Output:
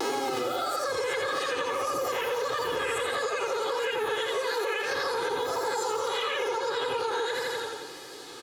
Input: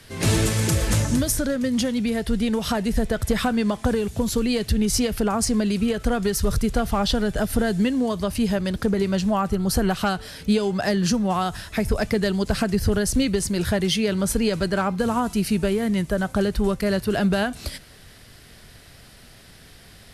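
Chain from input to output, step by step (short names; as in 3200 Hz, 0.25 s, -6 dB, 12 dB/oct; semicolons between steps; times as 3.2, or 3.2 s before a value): spectral swells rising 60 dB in 1.30 s; BPF 140–2400 Hz; feedback echo 0.205 s, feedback 58%, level -5 dB; vibrato 0.69 Hz 79 cents; comb 5.7 ms, depth 87%; compressor 8:1, threshold -29 dBFS, peak gain reduction 18 dB; wide varispeed 2.39×; gain +2 dB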